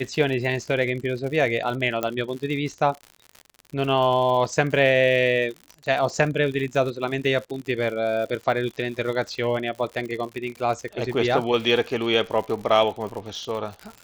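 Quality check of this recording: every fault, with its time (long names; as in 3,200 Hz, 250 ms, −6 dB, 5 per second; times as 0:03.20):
surface crackle 93 per second −31 dBFS
0:02.03: click −11 dBFS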